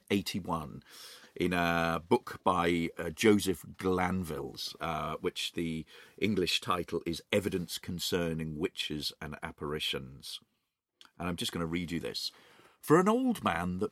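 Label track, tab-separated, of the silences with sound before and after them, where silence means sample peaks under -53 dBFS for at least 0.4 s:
10.420000	11.010000	silence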